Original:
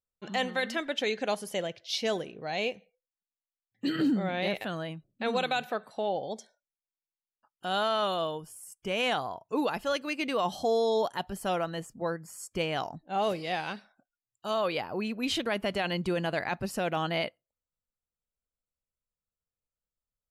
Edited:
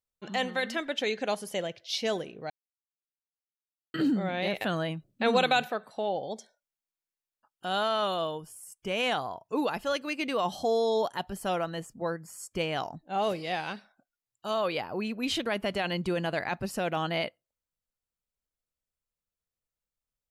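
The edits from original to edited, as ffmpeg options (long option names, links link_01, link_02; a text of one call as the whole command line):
ffmpeg -i in.wav -filter_complex "[0:a]asplit=5[link_01][link_02][link_03][link_04][link_05];[link_01]atrim=end=2.5,asetpts=PTS-STARTPTS,afade=type=out:start_time=2.496:duration=0.004:curve=hsin[link_06];[link_02]atrim=start=2.5:end=3.94,asetpts=PTS-STARTPTS,volume=0[link_07];[link_03]atrim=start=3.94:end=4.612,asetpts=PTS-STARTPTS,afade=type=in:duration=0.004:curve=hsin[link_08];[link_04]atrim=start=4.608:end=5.682,asetpts=PTS-STARTPTS,volume=5dB[link_09];[link_05]atrim=start=5.678[link_10];[link_06][link_07][link_08]concat=n=3:v=0:a=1[link_11];[link_11][link_09]acrossfade=duration=0.004:curve1=hsin:curve2=hsin[link_12];[link_12][link_10]acrossfade=duration=0.004:curve1=hsin:curve2=hsin" out.wav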